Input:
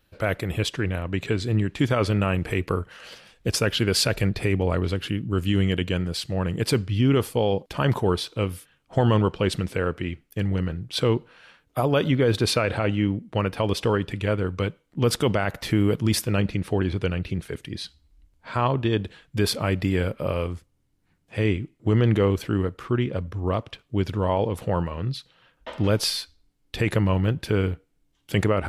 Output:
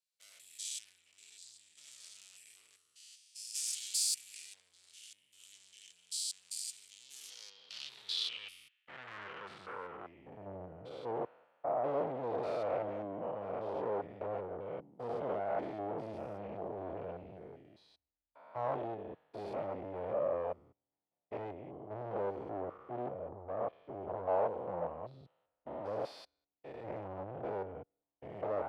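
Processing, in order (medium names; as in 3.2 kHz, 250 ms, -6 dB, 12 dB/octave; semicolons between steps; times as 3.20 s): spectrogram pixelated in time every 200 ms; band-stop 1.6 kHz, Q 7.1; valve stage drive 32 dB, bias 0.3; band-pass sweep 7.9 kHz -> 660 Hz, 6.99–10.51 s; three bands expanded up and down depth 70%; trim +5.5 dB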